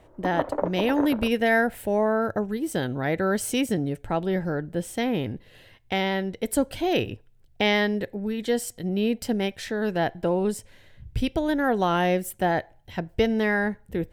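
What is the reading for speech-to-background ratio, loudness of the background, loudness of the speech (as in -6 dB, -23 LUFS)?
5.5 dB, -31.0 LUFS, -25.5 LUFS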